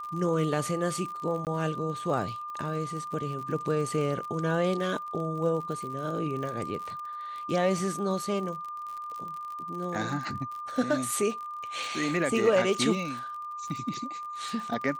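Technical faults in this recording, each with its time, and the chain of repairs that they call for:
crackle 49 per s -36 dBFS
whine 1.2 kHz -35 dBFS
1.45–1.47 s: dropout 18 ms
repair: de-click; band-stop 1.2 kHz, Q 30; interpolate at 1.45 s, 18 ms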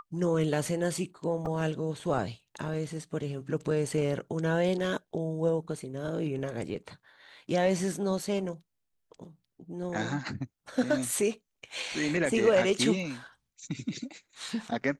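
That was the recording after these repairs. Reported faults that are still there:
nothing left

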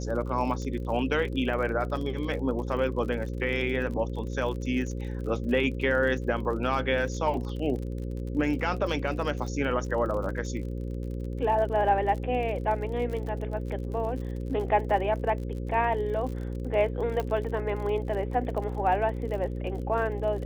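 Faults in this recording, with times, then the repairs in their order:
buzz 60 Hz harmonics 9 -33 dBFS
crackle 44 per s -36 dBFS
17.20 s: pop -18 dBFS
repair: de-click; de-hum 60 Hz, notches 9

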